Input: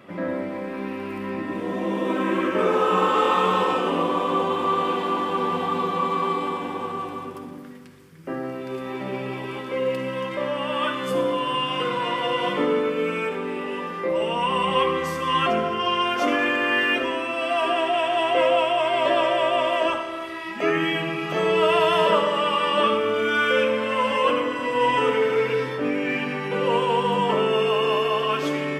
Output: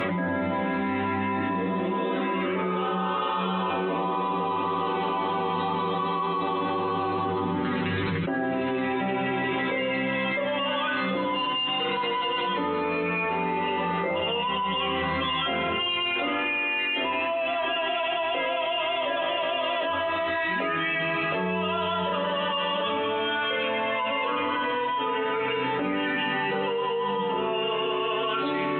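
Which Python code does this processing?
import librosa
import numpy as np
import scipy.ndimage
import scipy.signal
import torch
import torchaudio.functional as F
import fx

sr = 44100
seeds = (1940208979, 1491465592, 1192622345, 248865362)

y = fx.brickwall_lowpass(x, sr, high_hz=4100.0)
y = fx.stiff_resonator(y, sr, f0_hz=91.0, decay_s=0.38, stiffness=0.002)
y = fx.env_flatten(y, sr, amount_pct=100)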